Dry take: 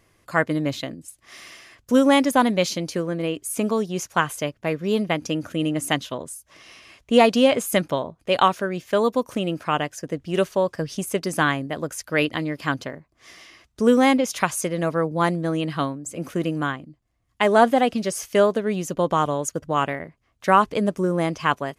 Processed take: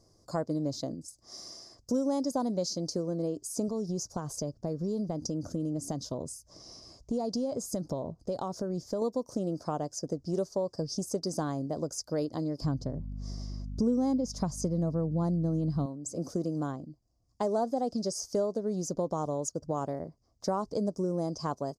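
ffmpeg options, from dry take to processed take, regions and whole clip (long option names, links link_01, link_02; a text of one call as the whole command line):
ffmpeg -i in.wav -filter_complex "[0:a]asettb=1/sr,asplit=3[link_01][link_02][link_03];[link_01]atrim=end=3.684[link_04];[link_02]atrim=start=3.68:end=9.02,asetpts=PTS-STARTPTS,afade=type=in:duration=0.004:curve=qsin,afade=type=out:start_time=5.336:duration=0.004:curve=qsin,acompressor=threshold=-31dB:ratio=2:attack=3.2:release=140:knee=1:detection=peak,lowshelf=frequency=190:gain=8[link_05];[link_03]atrim=start=9.016[link_06];[link_04][link_05]acrossfade=duration=0.004:curve1=hsin:curve2=qsin[link_07];[link_07][link_06]acrossfade=duration=0.004:curve1=qsin:curve2=hsin,asettb=1/sr,asplit=3[link_08][link_09][link_10];[link_08]atrim=end=12.624[link_11];[link_09]atrim=start=12.62:end=15.86,asetpts=PTS-STARTPTS,afade=type=in:duration=0.004:curve=qsin,afade=type=out:start_time=3.236:duration=0.004:curve=qsin,bass=frequency=250:gain=13,treble=frequency=4000:gain=-4,aeval=exprs='val(0)+0.0178*(sin(2*PI*50*n/s)+sin(2*PI*2*50*n/s)/2+sin(2*PI*3*50*n/s)/3+sin(2*PI*4*50*n/s)/4+sin(2*PI*5*50*n/s)/5)':channel_layout=same[link_12];[link_10]atrim=start=15.856[link_13];[link_11][link_12]acrossfade=duration=0.004:curve1=hsin:curve2=qsin[link_14];[link_14][link_13]acrossfade=duration=0.004:curve1=qsin:curve2=hsin,firequalizer=gain_entry='entry(660,0);entry(1800,-22);entry(2700,-28);entry(4900,11);entry(11000,-4)':delay=0.05:min_phase=1,acompressor=threshold=-28dB:ratio=3,highshelf=frequency=5500:gain=-8,volume=-1.5dB" out.wav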